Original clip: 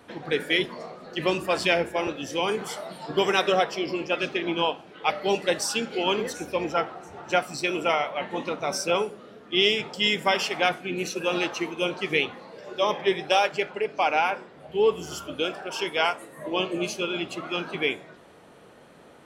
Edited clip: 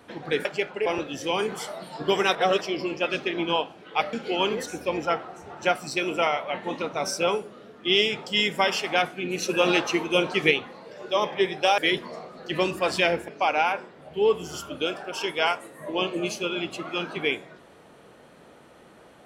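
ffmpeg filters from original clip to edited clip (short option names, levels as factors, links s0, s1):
-filter_complex "[0:a]asplit=10[s0][s1][s2][s3][s4][s5][s6][s7][s8][s9];[s0]atrim=end=0.452[s10];[s1]atrim=start=13.448:end=13.862[s11];[s2]atrim=start=1.948:end=3.442[s12];[s3]atrim=start=3.438:end=3.702,asetpts=PTS-STARTPTS,areverse[s13];[s4]atrim=start=3.698:end=5.222[s14];[s5]atrim=start=5.798:end=11.092[s15];[s6]atrim=start=11.088:end=12.182,asetpts=PTS-STARTPTS,volume=1.68[s16];[s7]atrim=start=12.178:end=13.452[s17];[s8]atrim=start=0.448:end=1.952[s18];[s9]atrim=start=13.858[s19];[s10][s11]acrossfade=d=0.004:c1=hsin:c2=hsin[s20];[s20][s12]acrossfade=d=0.004:c1=hsin:c2=hsin[s21];[s21][s13]acrossfade=d=0.004:c1=hsin:c2=hsin[s22];[s22][s14]acrossfade=d=0.004:c1=hsin:c2=hsin[s23];[s23][s15]acrossfade=d=0.004:c1=hsin:c2=hsin[s24];[s24][s16]acrossfade=d=0.004:c1=hsin:c2=hsin[s25];[s25][s17]acrossfade=d=0.004:c1=hsin:c2=hsin[s26];[s26][s18]acrossfade=d=0.004:c1=hsin:c2=hsin[s27];[s27][s19]acrossfade=d=0.004:c1=hsin:c2=hsin"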